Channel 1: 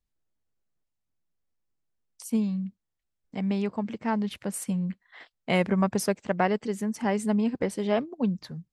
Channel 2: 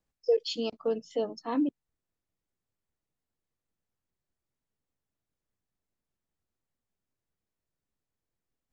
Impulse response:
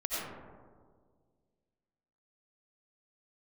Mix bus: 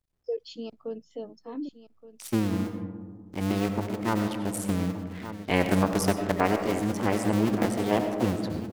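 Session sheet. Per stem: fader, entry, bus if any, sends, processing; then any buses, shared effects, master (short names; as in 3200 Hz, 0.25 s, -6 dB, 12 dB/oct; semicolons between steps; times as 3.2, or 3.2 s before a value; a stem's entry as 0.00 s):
+0.5 dB, 0.00 s, send -9 dB, echo send -10.5 dB, cycle switcher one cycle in 2, muted
-10.5 dB, 0.00 s, no send, echo send -15 dB, expander -50 dBFS; low shelf 370 Hz +10 dB; auto duck -6 dB, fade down 1.20 s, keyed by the first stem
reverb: on, RT60 1.8 s, pre-delay 50 ms
echo: echo 1.172 s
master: dry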